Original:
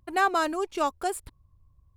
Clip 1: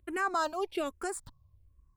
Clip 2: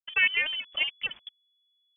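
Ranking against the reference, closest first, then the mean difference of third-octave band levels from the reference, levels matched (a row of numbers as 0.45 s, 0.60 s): 1, 2; 4.0 dB, 15.5 dB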